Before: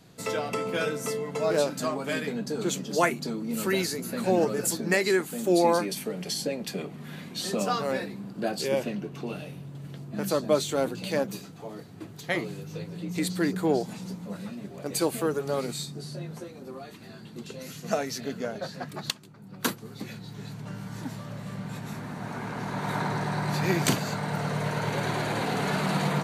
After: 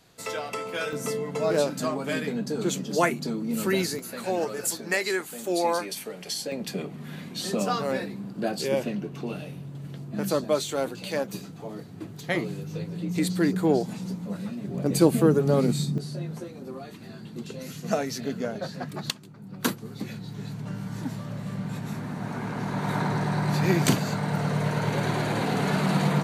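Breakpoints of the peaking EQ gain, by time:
peaking EQ 180 Hz 2.3 oct
-9 dB
from 0.93 s +3 dB
from 3.99 s -9 dB
from 6.52 s +2.5 dB
from 10.44 s -3.5 dB
from 11.34 s +4.5 dB
from 14.68 s +14.5 dB
from 15.98 s +4.5 dB

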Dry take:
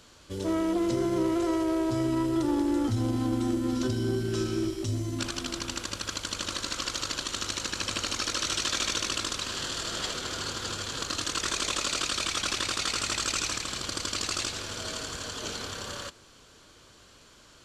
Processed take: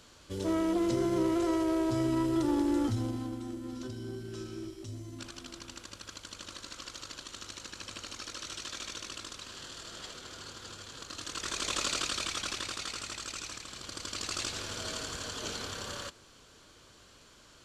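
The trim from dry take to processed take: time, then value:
2.84 s -2 dB
3.41 s -12 dB
11.06 s -12 dB
11.82 s -2 dB
13.19 s -11 dB
13.71 s -11 dB
14.58 s -2.5 dB

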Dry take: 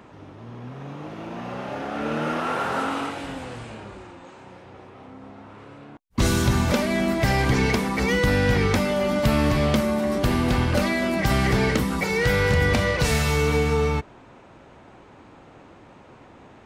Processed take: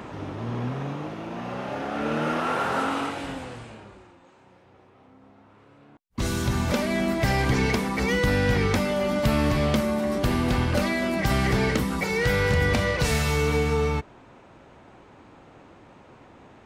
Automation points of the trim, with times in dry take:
0.61 s +9 dB
1.22 s 0 dB
3.30 s 0 dB
4.20 s -10.5 dB
5.68 s -10.5 dB
6.87 s -2 dB

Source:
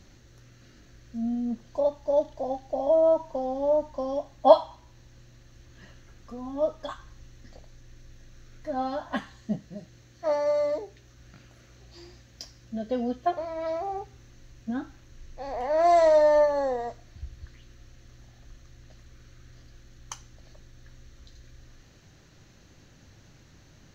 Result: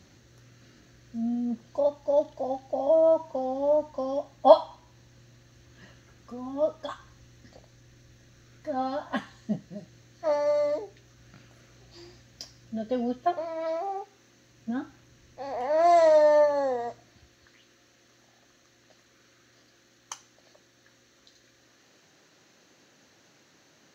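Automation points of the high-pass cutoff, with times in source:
13.01 s 88 Hz
14.02 s 360 Hz
14.74 s 120 Hz
16.88 s 120 Hz
17.34 s 300 Hz

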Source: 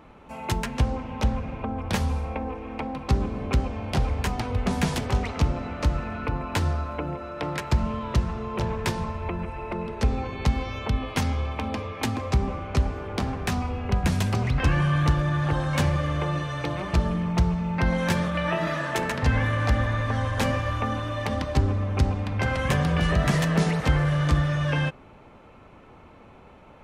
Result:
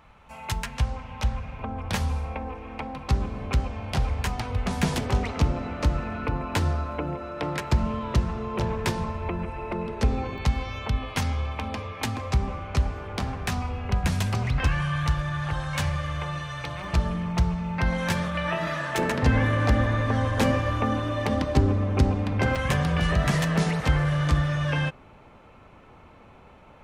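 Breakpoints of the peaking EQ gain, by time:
peaking EQ 320 Hz 1.7 oct
-14 dB
from 1.59 s -6 dB
from 4.83 s +1 dB
from 10.38 s -5.5 dB
from 14.67 s -14 dB
from 16.84 s -5.5 dB
from 18.98 s +5.5 dB
from 22.55 s -3 dB

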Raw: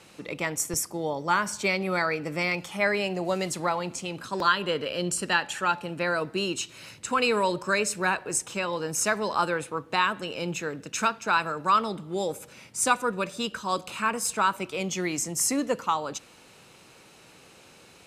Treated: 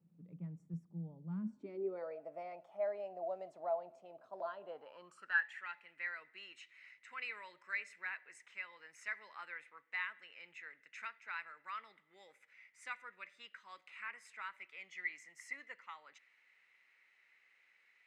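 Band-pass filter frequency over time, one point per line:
band-pass filter, Q 14
1.30 s 170 Hz
2.20 s 660 Hz
4.66 s 660 Hz
5.54 s 2 kHz

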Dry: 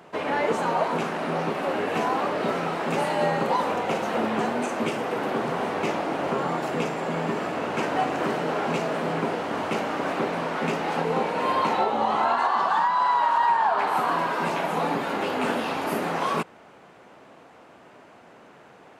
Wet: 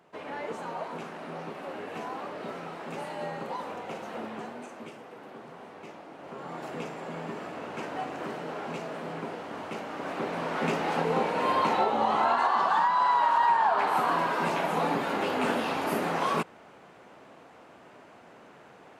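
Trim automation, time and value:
4.20 s -12 dB
5.12 s -19 dB
6.17 s -19 dB
6.64 s -10 dB
9.86 s -10 dB
10.63 s -2 dB

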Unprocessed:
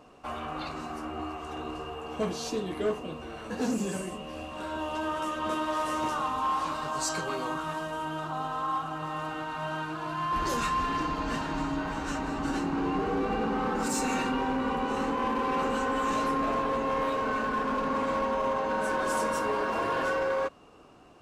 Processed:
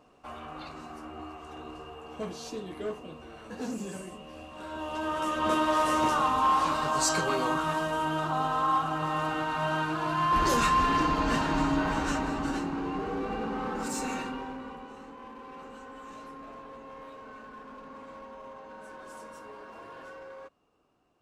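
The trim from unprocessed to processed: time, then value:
4.53 s -6 dB
5.51 s +4.5 dB
11.99 s +4.5 dB
12.83 s -4 dB
14.09 s -4 dB
15.01 s -17 dB

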